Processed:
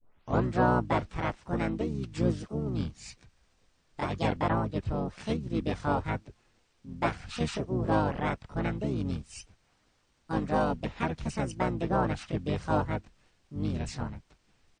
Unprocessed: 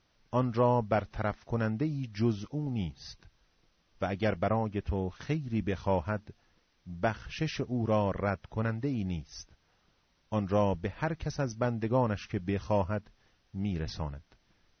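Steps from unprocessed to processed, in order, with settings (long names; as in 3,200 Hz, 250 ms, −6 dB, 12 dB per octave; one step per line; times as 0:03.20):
turntable start at the beginning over 0.45 s
pitch-shifted copies added −12 semitones −4 dB, +3 semitones −6 dB, +7 semitones 0 dB
level −3.5 dB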